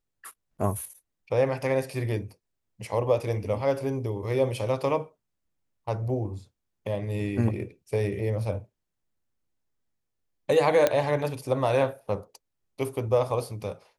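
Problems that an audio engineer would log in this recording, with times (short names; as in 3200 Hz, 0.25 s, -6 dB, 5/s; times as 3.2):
10.87 pop -8 dBFS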